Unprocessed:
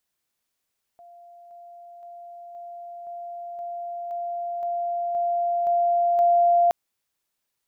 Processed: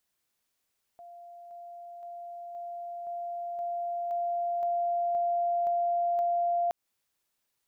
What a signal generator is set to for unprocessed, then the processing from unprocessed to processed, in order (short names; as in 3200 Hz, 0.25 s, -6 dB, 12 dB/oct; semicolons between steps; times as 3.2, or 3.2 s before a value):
level ladder 694 Hz -45 dBFS, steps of 3 dB, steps 11, 0.52 s 0.00 s
compressor 12:1, threshold -26 dBFS